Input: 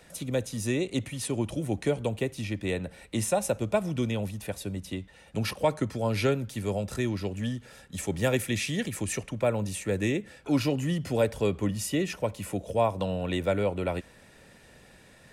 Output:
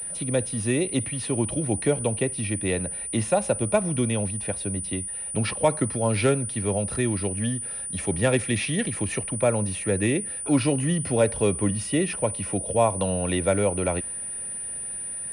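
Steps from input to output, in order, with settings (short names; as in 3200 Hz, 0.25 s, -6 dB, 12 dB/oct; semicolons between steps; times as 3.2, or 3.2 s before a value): pulse-width modulation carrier 9400 Hz; gain +4 dB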